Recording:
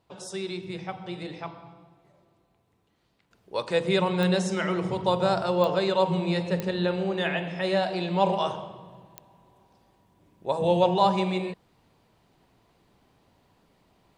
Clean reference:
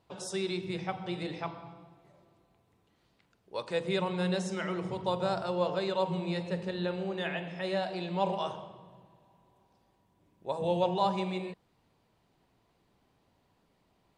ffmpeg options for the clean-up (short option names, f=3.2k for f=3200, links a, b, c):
-af "adeclick=t=4,asetnsamples=n=441:p=0,asendcmd='3.31 volume volume -7dB',volume=0dB"